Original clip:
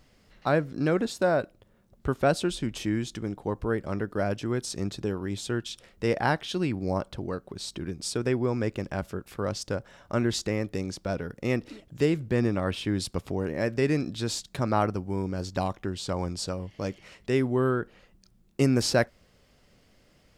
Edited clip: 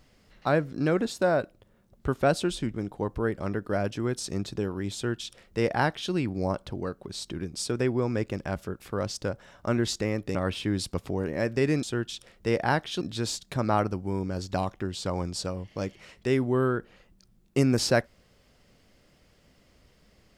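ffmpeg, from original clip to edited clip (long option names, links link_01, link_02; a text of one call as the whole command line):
ffmpeg -i in.wav -filter_complex "[0:a]asplit=5[link_01][link_02][link_03][link_04][link_05];[link_01]atrim=end=2.742[link_06];[link_02]atrim=start=3.198:end=10.812[link_07];[link_03]atrim=start=12.558:end=14.042[link_08];[link_04]atrim=start=5.398:end=6.582[link_09];[link_05]atrim=start=14.038[link_10];[link_06][link_07]acrossfade=duration=0.004:curve1=hsin:curve2=hsin[link_11];[link_11][link_08]acrossfade=duration=0.004:curve1=hsin:curve2=hsin[link_12];[link_12][link_09]acrossfade=duration=0.004:curve1=hsin:curve2=hsin[link_13];[link_13][link_10]acrossfade=duration=0.004:curve1=hsin:curve2=hsin" out.wav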